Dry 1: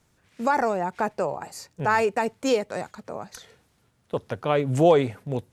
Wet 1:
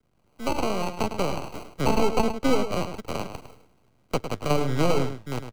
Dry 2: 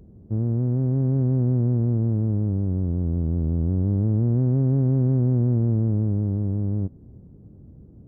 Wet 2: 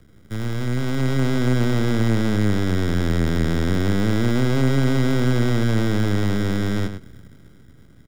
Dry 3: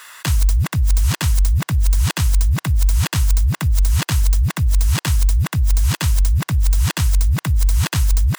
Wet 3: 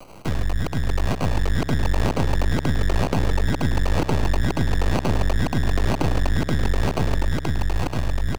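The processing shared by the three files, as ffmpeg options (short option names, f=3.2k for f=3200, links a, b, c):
-filter_complex "[0:a]aeval=exprs='max(val(0),0)':c=same,dynaudnorm=f=120:g=21:m=11dB,acrusher=samples=25:mix=1:aa=0.000001,acrossover=split=210|710|7500[a][b][c][d];[a]acompressor=threshold=-20dB:ratio=4[e];[b]acompressor=threshold=-21dB:ratio=4[f];[c]acompressor=threshold=-29dB:ratio=4[g];[d]acompressor=threshold=-49dB:ratio=4[h];[e][f][g][h]amix=inputs=4:normalize=0,asplit=2[i][j];[j]adelay=105,volume=-9dB,highshelf=f=4k:g=-2.36[k];[i][k]amix=inputs=2:normalize=0"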